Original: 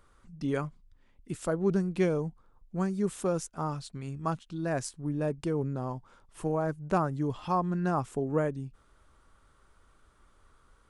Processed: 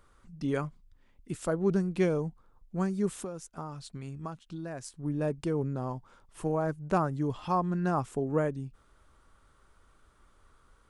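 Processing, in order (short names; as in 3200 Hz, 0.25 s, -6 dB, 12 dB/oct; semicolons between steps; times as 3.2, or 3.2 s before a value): 3.12–5.03 compressor 6:1, threshold -36 dBFS, peak gain reduction 11.5 dB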